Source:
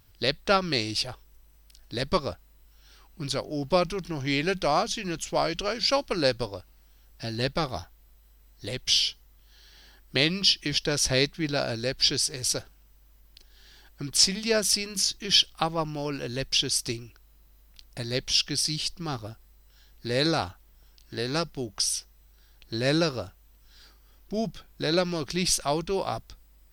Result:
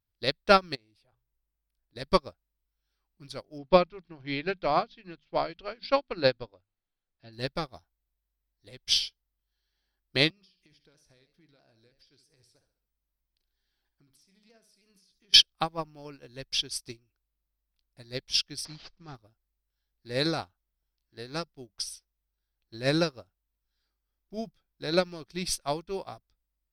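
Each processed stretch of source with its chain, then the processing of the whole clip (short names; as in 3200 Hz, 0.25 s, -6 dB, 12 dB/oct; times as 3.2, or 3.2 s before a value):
0.75–1.96 bell 5700 Hz -10.5 dB 1.4 oct + notches 60/120 Hz + compressor 2:1, threshold -42 dBFS
3.58–7.33 steep low-pass 4400 Hz + notches 50/100/150/200/250 Hz
10.3–15.34 compressor 8:1, threshold -35 dBFS + feedback echo 68 ms, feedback 42%, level -10 dB + shaped vibrato saw down 3.1 Hz, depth 100 cents
18.65–19.15 CVSD 32 kbps + low shelf 93 Hz +4 dB
whole clip: bell 6900 Hz -8 dB 0.3 oct; notch 2900 Hz, Q 16; upward expander 2.5:1, over -39 dBFS; gain +5.5 dB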